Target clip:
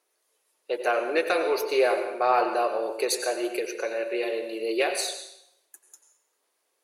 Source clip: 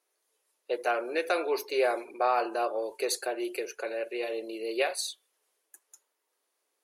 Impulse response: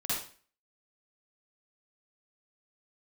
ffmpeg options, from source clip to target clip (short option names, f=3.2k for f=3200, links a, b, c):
-filter_complex "[0:a]aeval=exprs='0.178*(cos(1*acos(clip(val(0)/0.178,-1,1)))-cos(1*PI/2))+0.00316*(cos(5*acos(clip(val(0)/0.178,-1,1)))-cos(5*PI/2))':c=same,aphaser=in_gain=1:out_gain=1:delay=1.9:decay=0.2:speed=1.7:type=sinusoidal,asplit=2[a][b];[1:a]atrim=start_sample=2205,asetrate=23373,aresample=44100[c];[b][c]afir=irnorm=-1:irlink=0,volume=-17dB[d];[a][d]amix=inputs=2:normalize=0,volume=2dB"